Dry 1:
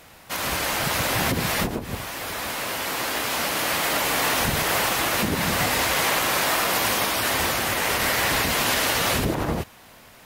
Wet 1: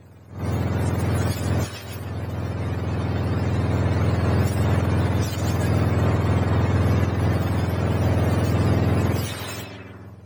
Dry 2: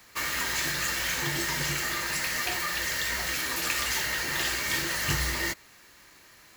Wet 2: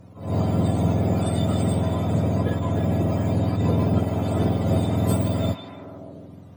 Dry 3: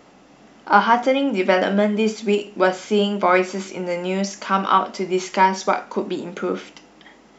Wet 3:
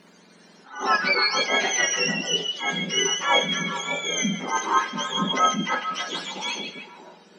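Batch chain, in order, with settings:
frequency axis turned over on the octave scale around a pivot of 1,100 Hz
harmonic generator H 2 −26 dB, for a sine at −3 dBFS
on a send: echo through a band-pass that steps 149 ms, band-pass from 3,300 Hz, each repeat −0.7 octaves, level −4 dB
on the sum: level that may rise only so fast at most 120 dB per second
loudness normalisation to −23 LKFS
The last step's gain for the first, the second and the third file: −3.5, +2.0, −0.5 decibels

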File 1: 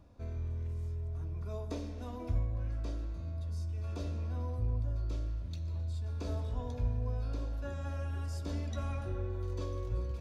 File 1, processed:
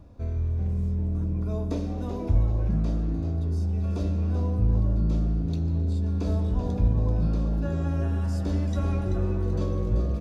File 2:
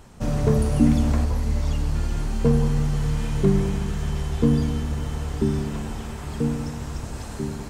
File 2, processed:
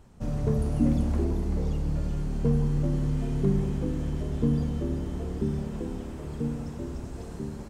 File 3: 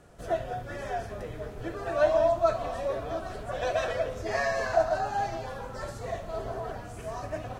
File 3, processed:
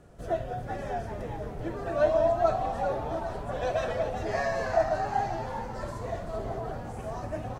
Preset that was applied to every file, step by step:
tilt shelving filter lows +3.5 dB, about 660 Hz
echo with shifted repeats 385 ms, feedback 38%, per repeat +110 Hz, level −9 dB
normalise the peak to −12 dBFS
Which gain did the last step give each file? +7.0, −9.0, −0.5 decibels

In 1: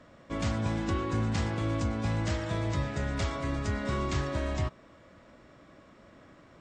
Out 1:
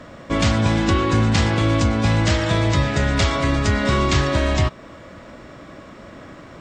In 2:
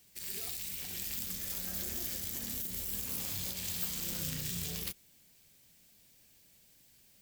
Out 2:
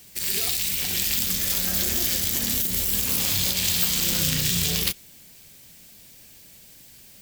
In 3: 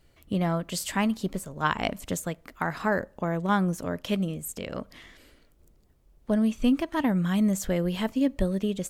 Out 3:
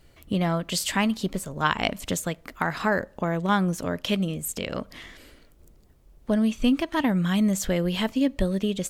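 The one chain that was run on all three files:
dynamic equaliser 3,500 Hz, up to +5 dB, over −48 dBFS, Q 0.74
in parallel at 0 dB: downward compressor, threshold −35 dBFS
on the sum: normalise the peak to −6 dBFS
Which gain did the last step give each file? +9.0, +8.5, −0.5 decibels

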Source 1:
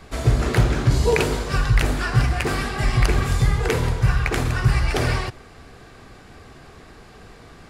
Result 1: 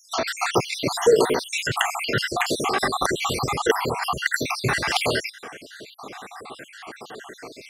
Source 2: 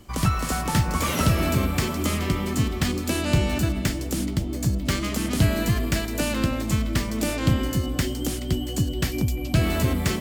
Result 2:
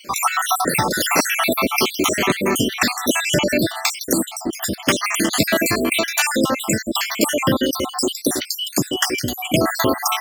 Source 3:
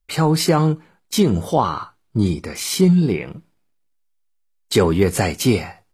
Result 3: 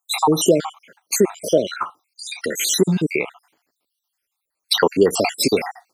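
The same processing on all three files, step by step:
time-frequency cells dropped at random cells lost 66%
high-pass filter 340 Hz 12 dB per octave
downward compressor 1.5 to 1, threshold −37 dBFS
normalise the peak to −2 dBFS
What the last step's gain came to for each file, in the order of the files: +12.5, +17.5, +13.0 decibels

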